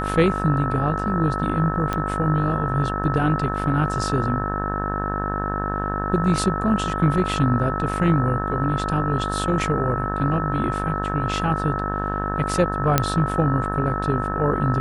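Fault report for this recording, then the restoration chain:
mains buzz 50 Hz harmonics 36 −27 dBFS
whistle 1,300 Hz −27 dBFS
0:01.93: click −11 dBFS
0:12.98: click −1 dBFS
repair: click removal
notch filter 1,300 Hz, Q 30
hum removal 50 Hz, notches 36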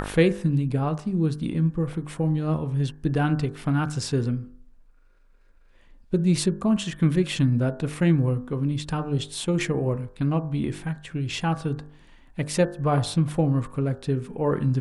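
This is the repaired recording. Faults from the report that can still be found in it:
none of them is left

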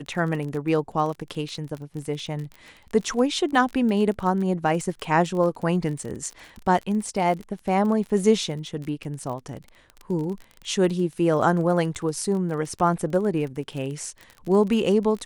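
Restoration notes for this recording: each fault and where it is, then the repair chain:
surface crackle 27 per second −31 dBFS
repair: click removal

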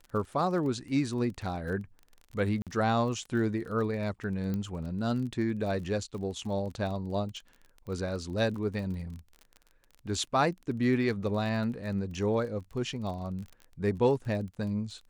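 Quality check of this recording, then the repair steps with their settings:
surface crackle 32 per second −39 dBFS
0:02.62–0:02.67: drop-out 47 ms
0:04.54: click −22 dBFS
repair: click removal
repair the gap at 0:02.62, 47 ms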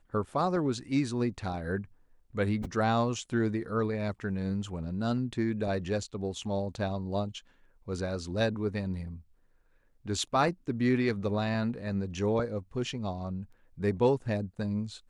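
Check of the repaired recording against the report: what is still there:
none of them is left

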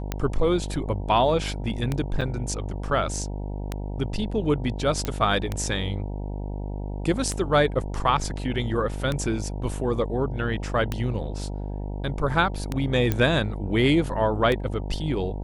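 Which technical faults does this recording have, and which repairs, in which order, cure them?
mains buzz 50 Hz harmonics 19 −31 dBFS
scratch tick 33 1/3 rpm −12 dBFS
0:02.21–0:02.22: drop-out 5.9 ms
0:05.05: click −13 dBFS
0:13.12: click −10 dBFS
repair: click removal
hum removal 50 Hz, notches 19
repair the gap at 0:02.21, 5.9 ms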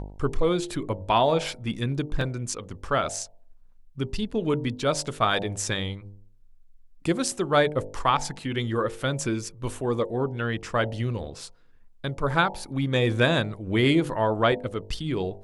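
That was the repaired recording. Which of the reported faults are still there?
none of them is left

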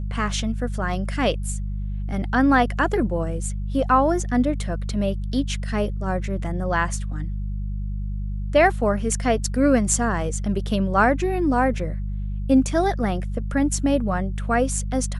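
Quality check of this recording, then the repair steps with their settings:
mains hum 50 Hz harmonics 4 −27 dBFS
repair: hum removal 50 Hz, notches 4

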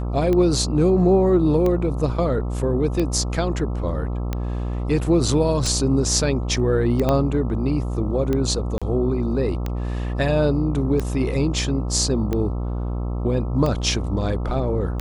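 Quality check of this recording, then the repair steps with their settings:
mains buzz 60 Hz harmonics 22 −25 dBFS
scratch tick 45 rpm −12 dBFS
0:07.09: click −8 dBFS
0:08.78–0:08.82: drop-out 36 ms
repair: click removal
hum removal 60 Hz, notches 22
repair the gap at 0:08.78, 36 ms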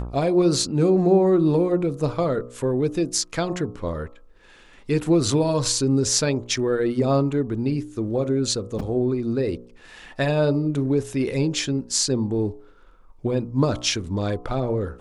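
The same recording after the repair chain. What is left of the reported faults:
0:07.09: click

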